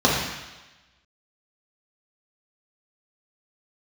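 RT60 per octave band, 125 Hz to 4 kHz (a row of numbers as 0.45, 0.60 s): 1.0, 1.0, 1.1, 1.1, 1.2, 1.2 s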